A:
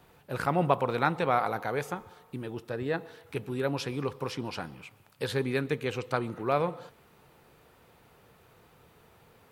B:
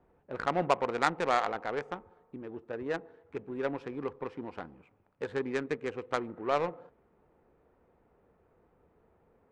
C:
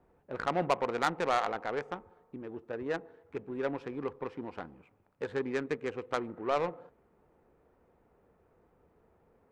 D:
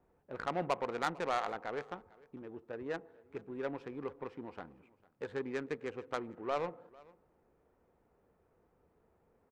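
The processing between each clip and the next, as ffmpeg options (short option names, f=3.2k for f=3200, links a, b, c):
-af "adynamicsmooth=sensitivity=1:basefreq=690,equalizer=f=125:t=o:w=1:g=-12,equalizer=f=2k:t=o:w=1:g=5,equalizer=f=8k:t=o:w=1:g=11,volume=-1.5dB"
-af "asoftclip=type=tanh:threshold=-16dB"
-af "aecho=1:1:450:0.0668,volume=-5dB"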